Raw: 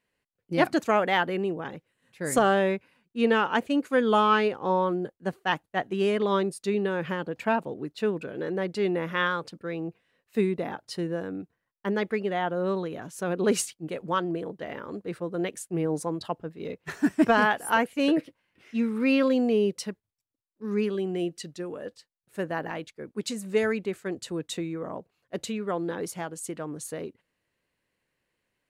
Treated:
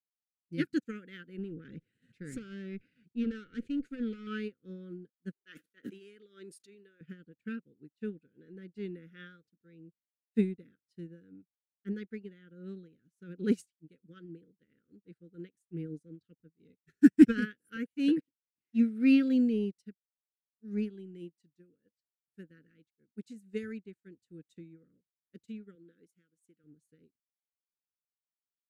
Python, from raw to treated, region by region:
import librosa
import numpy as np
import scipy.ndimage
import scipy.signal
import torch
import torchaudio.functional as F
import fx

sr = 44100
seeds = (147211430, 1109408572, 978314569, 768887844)

y = fx.chain(x, sr, fx.tube_stage(drive_db=22.0, bias=0.55),
    fx.air_absorb(metres=56.0),
    fx.env_flatten(amount_pct=70), at=(1.38, 4.27))
y = fx.chain(y, sr, fx.highpass(hz=470.0, slope=12),
    fx.sustainer(db_per_s=22.0), at=(5.33, 7.01))
y = fx.chain(y, sr, fx.highpass(hz=260.0, slope=6),
    fx.peak_eq(hz=4700.0, db=-6.0, octaves=0.26), at=(25.75, 26.64))
y = scipy.signal.sosfilt(scipy.signal.ellip(3, 1.0, 40, [490.0, 1400.0], 'bandstop', fs=sr, output='sos'), y)
y = fx.low_shelf_res(y, sr, hz=350.0, db=7.0, q=1.5)
y = fx.upward_expand(y, sr, threshold_db=-39.0, expansion=2.5)